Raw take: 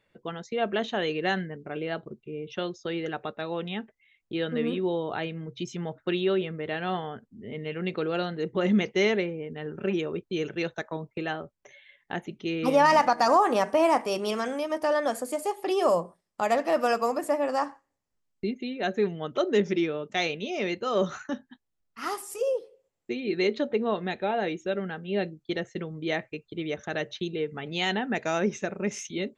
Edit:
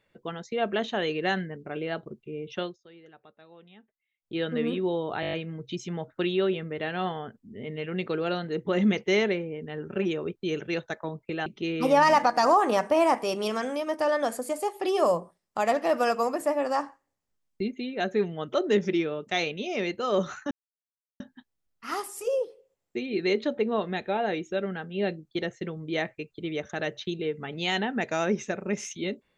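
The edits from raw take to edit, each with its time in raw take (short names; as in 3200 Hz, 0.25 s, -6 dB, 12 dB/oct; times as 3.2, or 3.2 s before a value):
2.62–4.37 dip -20 dB, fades 0.15 s
5.21 stutter 0.02 s, 7 plays
11.34–12.29 cut
21.34 insert silence 0.69 s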